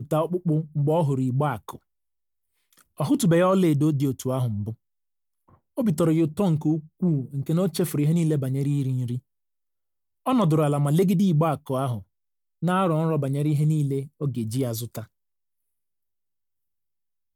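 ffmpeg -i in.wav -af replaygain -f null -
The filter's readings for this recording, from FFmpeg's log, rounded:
track_gain = +5.5 dB
track_peak = 0.208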